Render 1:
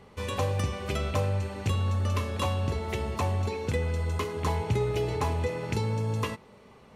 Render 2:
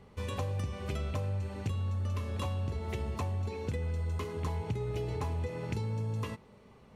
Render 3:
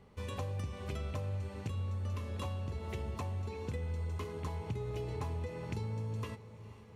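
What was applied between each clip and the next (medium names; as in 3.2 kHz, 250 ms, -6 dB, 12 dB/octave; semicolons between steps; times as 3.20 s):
bass shelf 250 Hz +7 dB; compression, threshold -24 dBFS, peak gain reduction 8 dB; trim -6.5 dB
echo that smears into a reverb 484 ms, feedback 62%, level -15.5 dB; trim -4 dB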